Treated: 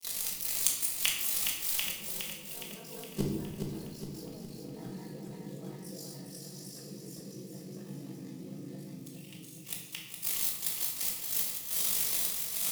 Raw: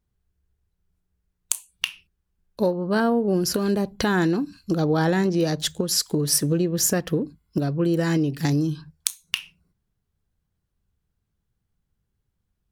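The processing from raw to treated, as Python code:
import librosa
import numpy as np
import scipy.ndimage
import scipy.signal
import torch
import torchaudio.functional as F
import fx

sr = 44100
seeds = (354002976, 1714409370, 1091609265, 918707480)

p1 = x + 0.5 * 10.0 ** (-17.5 / 20.0) * np.diff(np.sign(x), prepend=np.sign(x[:1]))
p2 = fx.peak_eq(p1, sr, hz=1500.0, db=-9.0, octaves=0.36)
p3 = p2 + 0.62 * np.pad(p2, (int(6.3 * sr / 1000.0), 0))[:len(p2)]
p4 = fx.granulator(p3, sr, seeds[0], grain_ms=179.0, per_s=20.0, spray_ms=886.0, spread_st=0)
p5 = p4 * np.sin(2.0 * np.pi * 25.0 * np.arange(len(p4)) / sr)
p6 = fx.gate_flip(p5, sr, shuts_db=-22.0, range_db=-31)
p7 = p6 + fx.echo_feedback(p6, sr, ms=414, feedback_pct=54, wet_db=-6.0, dry=0)
p8 = fx.room_shoebox(p7, sr, seeds[1], volume_m3=400.0, walls='mixed', distance_m=1.6)
y = p8 * librosa.db_to_amplitude(6.0)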